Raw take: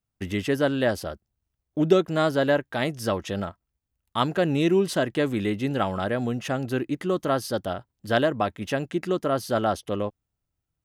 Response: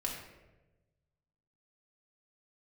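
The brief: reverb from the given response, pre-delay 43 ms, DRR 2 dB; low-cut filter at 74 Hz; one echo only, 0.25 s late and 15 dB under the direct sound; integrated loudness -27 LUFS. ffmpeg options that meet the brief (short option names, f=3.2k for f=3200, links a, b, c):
-filter_complex "[0:a]highpass=74,aecho=1:1:250:0.178,asplit=2[a][b];[1:a]atrim=start_sample=2205,adelay=43[c];[b][c]afir=irnorm=-1:irlink=0,volume=-4.5dB[d];[a][d]amix=inputs=2:normalize=0,volume=-3.5dB"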